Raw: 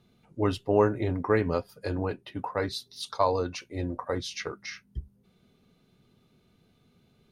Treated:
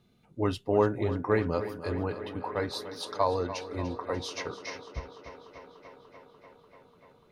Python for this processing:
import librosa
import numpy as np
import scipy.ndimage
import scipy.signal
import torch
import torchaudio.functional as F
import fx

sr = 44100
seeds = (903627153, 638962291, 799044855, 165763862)

y = fx.echo_tape(x, sr, ms=294, feedback_pct=84, wet_db=-12.0, lp_hz=5400.0, drive_db=6.0, wow_cents=6)
y = y * 10.0 ** (-2.0 / 20.0)